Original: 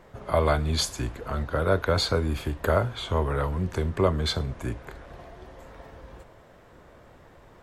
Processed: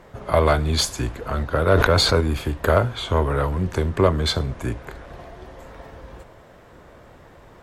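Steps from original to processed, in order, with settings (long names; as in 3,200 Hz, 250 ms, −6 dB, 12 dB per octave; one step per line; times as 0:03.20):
harmonic generator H 6 −26 dB, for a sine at −7.5 dBFS
0:01.68–0:02.21: level that may fall only so fast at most 30 dB per second
level +5 dB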